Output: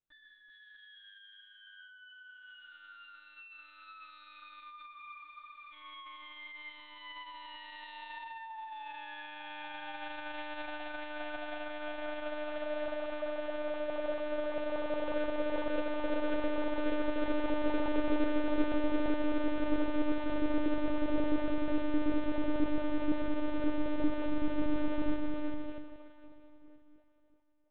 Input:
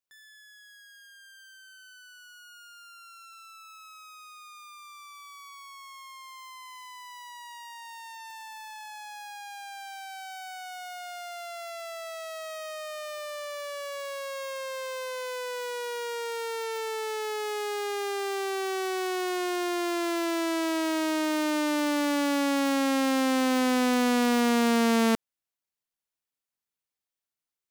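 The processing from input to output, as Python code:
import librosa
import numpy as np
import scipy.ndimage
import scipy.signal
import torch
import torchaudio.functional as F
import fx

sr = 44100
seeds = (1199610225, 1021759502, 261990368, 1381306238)

y = fx.tilt_shelf(x, sr, db=6.5, hz=690.0)
y = fx.rider(y, sr, range_db=5, speed_s=0.5)
y = fx.echo_multitap(y, sr, ms=(137, 145, 193, 384, 633), db=(-20.0, -17.5, -16.5, -3.5, -8.0))
y = fx.rev_plate(y, sr, seeds[0], rt60_s=3.7, hf_ratio=0.95, predelay_ms=0, drr_db=7.5)
y = fx.lpc_monotone(y, sr, seeds[1], pitch_hz=300.0, order=8)
y = fx.spec_freeze(y, sr, seeds[2], at_s=4.95, hold_s=0.78)
y = y * 10.0 ** (-5.5 / 20.0)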